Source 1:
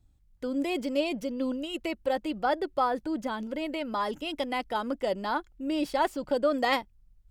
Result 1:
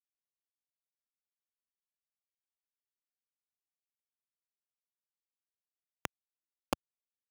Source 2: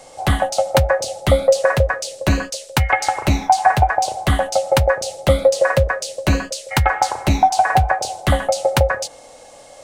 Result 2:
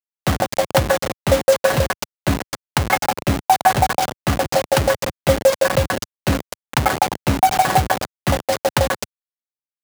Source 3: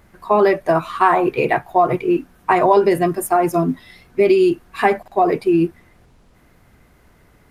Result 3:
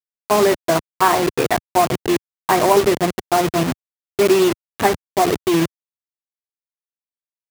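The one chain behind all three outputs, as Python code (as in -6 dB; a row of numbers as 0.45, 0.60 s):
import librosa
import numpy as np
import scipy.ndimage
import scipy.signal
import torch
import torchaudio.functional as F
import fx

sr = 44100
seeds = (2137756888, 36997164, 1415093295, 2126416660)

y = fx.delta_hold(x, sr, step_db=-14.5)
y = scipy.signal.sosfilt(scipy.signal.butter(2, 92.0, 'highpass', fs=sr, output='sos'), y)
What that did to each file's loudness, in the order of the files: -12.0, -1.5, -1.0 LU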